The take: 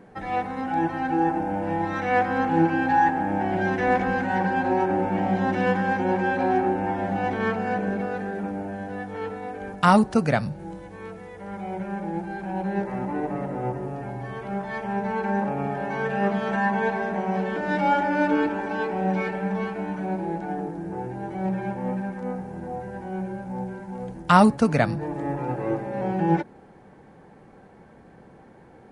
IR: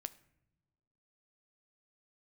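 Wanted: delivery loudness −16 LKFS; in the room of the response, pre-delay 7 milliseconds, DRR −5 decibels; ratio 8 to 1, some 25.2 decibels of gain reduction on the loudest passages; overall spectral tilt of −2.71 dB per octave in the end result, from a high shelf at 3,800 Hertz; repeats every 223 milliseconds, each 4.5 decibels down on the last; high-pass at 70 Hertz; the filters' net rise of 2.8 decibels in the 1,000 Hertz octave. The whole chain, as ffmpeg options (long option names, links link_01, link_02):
-filter_complex "[0:a]highpass=70,equalizer=frequency=1000:width_type=o:gain=4,highshelf=frequency=3800:gain=-4.5,acompressor=threshold=-35dB:ratio=8,aecho=1:1:223|446|669|892|1115|1338|1561|1784|2007:0.596|0.357|0.214|0.129|0.0772|0.0463|0.0278|0.0167|0.01,asplit=2[link_01][link_02];[1:a]atrim=start_sample=2205,adelay=7[link_03];[link_02][link_03]afir=irnorm=-1:irlink=0,volume=8.5dB[link_04];[link_01][link_04]amix=inputs=2:normalize=0,volume=14.5dB"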